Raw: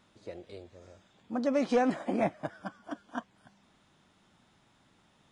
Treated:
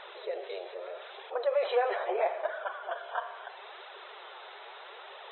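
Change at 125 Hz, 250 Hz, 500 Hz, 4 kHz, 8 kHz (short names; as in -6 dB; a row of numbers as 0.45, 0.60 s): under -40 dB, under -15 dB, +2.5 dB, +7.0 dB, under -25 dB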